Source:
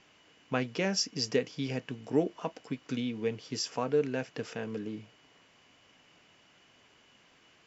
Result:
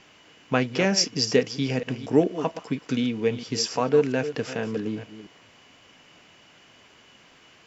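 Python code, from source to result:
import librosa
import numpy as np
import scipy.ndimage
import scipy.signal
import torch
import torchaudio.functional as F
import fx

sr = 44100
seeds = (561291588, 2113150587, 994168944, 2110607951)

y = fx.reverse_delay(x, sr, ms=229, wet_db=-12.5)
y = F.gain(torch.from_numpy(y), 8.0).numpy()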